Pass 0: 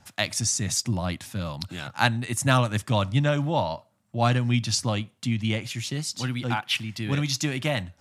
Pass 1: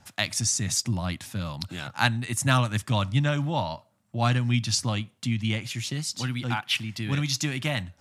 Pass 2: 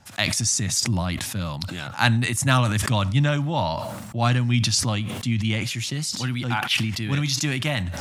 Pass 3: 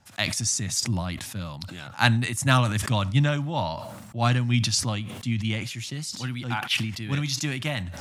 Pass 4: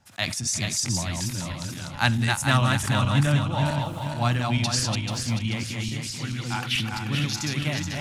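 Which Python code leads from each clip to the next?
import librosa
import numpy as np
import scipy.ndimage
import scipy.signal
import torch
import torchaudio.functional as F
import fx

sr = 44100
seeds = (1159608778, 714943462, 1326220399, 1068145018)

y1 = fx.dynamic_eq(x, sr, hz=490.0, q=1.0, threshold_db=-39.0, ratio=4.0, max_db=-6)
y2 = fx.sustainer(y1, sr, db_per_s=35.0)
y2 = y2 * 10.0 ** (2.5 / 20.0)
y3 = fx.upward_expand(y2, sr, threshold_db=-29.0, expansion=1.5)
y4 = fx.reverse_delay_fb(y3, sr, ms=218, feedback_pct=64, wet_db=-3)
y4 = y4 * 10.0 ** (-2.0 / 20.0)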